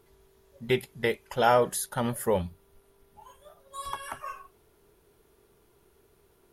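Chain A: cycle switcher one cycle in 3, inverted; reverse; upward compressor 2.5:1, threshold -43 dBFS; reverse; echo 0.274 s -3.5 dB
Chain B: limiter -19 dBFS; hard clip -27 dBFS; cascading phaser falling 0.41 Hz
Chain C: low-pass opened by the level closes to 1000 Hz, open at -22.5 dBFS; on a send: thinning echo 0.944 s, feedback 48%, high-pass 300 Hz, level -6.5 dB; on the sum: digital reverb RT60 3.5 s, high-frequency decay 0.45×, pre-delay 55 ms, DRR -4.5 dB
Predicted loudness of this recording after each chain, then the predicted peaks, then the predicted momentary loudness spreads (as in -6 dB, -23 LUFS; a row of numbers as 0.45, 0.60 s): -27.5, -36.0, -24.0 LUFS; -9.5, -23.5, -5.0 dBFS; 21, 18, 22 LU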